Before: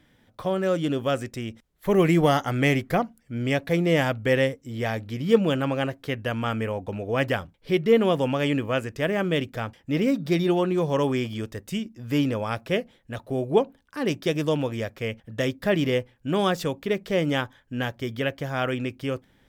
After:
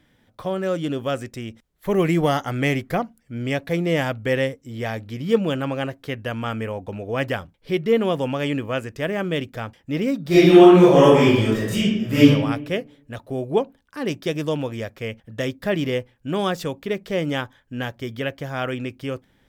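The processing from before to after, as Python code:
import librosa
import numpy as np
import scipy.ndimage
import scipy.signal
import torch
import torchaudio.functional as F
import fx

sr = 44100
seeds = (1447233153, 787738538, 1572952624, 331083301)

y = fx.reverb_throw(x, sr, start_s=10.27, length_s=1.98, rt60_s=0.97, drr_db=-11.5)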